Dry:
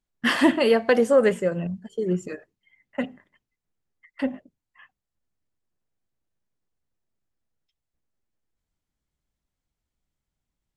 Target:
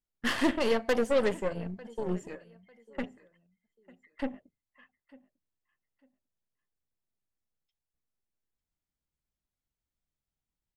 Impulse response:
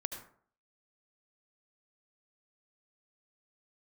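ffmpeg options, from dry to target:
-af "aecho=1:1:898|1796:0.0891|0.0223,aeval=exprs='0.422*(cos(1*acos(clip(val(0)/0.422,-1,1)))-cos(1*PI/2))+0.0473*(cos(8*acos(clip(val(0)/0.422,-1,1)))-cos(8*PI/2))':c=same,volume=-8.5dB"

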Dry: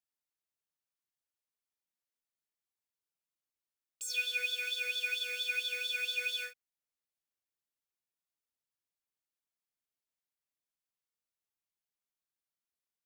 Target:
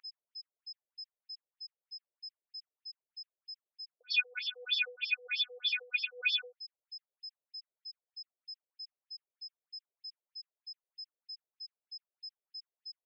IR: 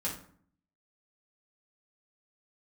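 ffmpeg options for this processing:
-af "aeval=exprs='val(0)+0.00501*sin(2*PI*5100*n/s)':c=same,afftfilt=real='re*between(b*sr/1024,470*pow(4200/470,0.5+0.5*sin(2*PI*3.2*pts/sr))/1.41,470*pow(4200/470,0.5+0.5*sin(2*PI*3.2*pts/sr))*1.41)':imag='im*between(b*sr/1024,470*pow(4200/470,0.5+0.5*sin(2*PI*3.2*pts/sr))/1.41,470*pow(4200/470,0.5+0.5*sin(2*PI*3.2*pts/sr))*1.41)':win_size=1024:overlap=0.75,volume=6dB"

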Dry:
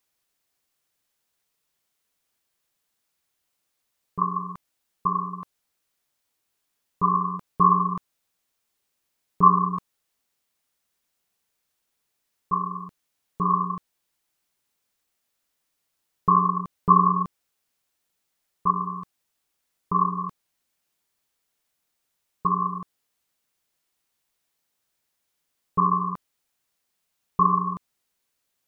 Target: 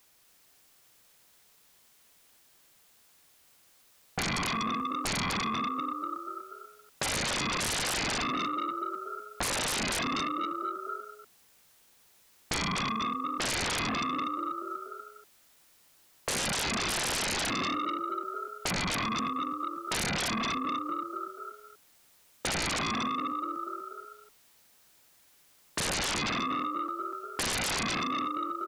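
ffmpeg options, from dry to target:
-filter_complex "[0:a]asplit=7[a][b][c][d][e][f][g];[b]adelay=243,afreqshift=40,volume=-5dB[h];[c]adelay=486,afreqshift=80,volume=-11.4dB[i];[d]adelay=729,afreqshift=120,volume=-17.8dB[j];[e]adelay=972,afreqshift=160,volume=-24.1dB[k];[f]adelay=1215,afreqshift=200,volume=-30.5dB[l];[g]adelay=1458,afreqshift=240,volume=-36.9dB[m];[a][h][i][j][k][l][m]amix=inputs=7:normalize=0,alimiter=limit=-14dB:level=0:latency=1:release=37,aeval=exprs='0.2*sin(PI/2*7.94*val(0)/0.2)':c=same,acompressor=threshold=-22dB:ratio=4,volume=-8.5dB"

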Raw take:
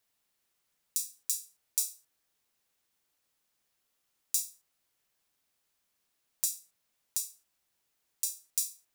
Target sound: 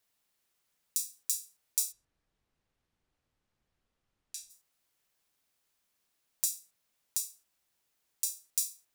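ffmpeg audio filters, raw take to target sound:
-filter_complex "[0:a]asplit=3[a][b][c];[a]afade=t=out:st=1.91:d=0.02[d];[b]aemphasis=mode=reproduction:type=riaa,afade=t=in:st=1.91:d=0.02,afade=t=out:st=4.49:d=0.02[e];[c]afade=t=in:st=4.49:d=0.02[f];[d][e][f]amix=inputs=3:normalize=0"

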